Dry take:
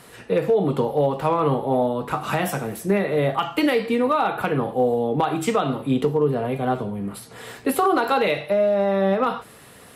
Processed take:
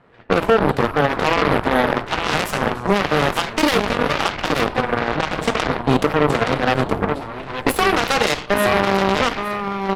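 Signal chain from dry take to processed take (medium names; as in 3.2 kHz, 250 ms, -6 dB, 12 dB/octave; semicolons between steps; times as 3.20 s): 3.82–5.60 s: compression 10:1, threshold -21 dBFS, peak gain reduction 6.5 dB; level-controlled noise filter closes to 1.5 kHz, open at -17 dBFS; feedback delay 870 ms, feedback 17%, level -6.5 dB; Schroeder reverb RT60 0.43 s, combs from 31 ms, DRR 16.5 dB; peak limiter -15.5 dBFS, peak gain reduction 8 dB; Chebyshev shaper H 3 -8 dB, 6 -18 dB, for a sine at -15.5 dBFS; trim +9 dB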